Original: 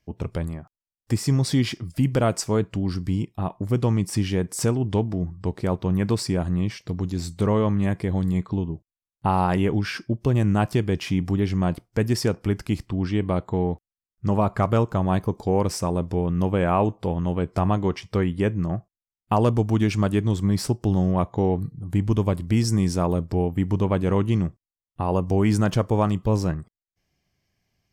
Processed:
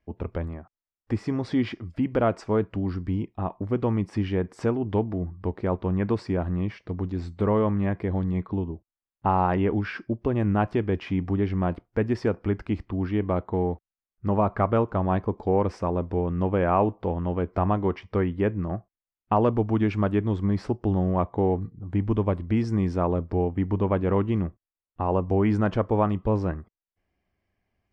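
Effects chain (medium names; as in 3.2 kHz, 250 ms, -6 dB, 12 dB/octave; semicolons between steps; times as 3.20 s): low-pass 2 kHz 12 dB/octave; peaking EQ 140 Hz -14.5 dB 0.45 oct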